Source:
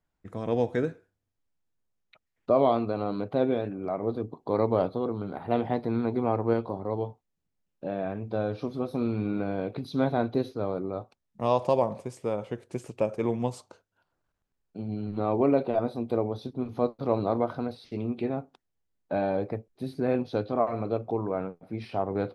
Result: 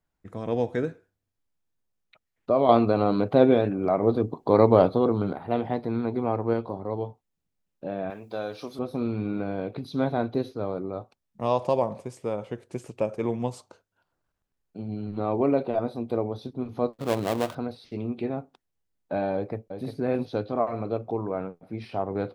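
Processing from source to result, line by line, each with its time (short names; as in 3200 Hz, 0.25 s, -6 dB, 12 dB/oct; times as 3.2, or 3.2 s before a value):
2.69–5.33 gain +7.5 dB
8.1–8.79 RIAA curve recording
16.93–17.55 switching dead time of 0.2 ms
19.35–19.9 echo throw 0.35 s, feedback 10%, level -7.5 dB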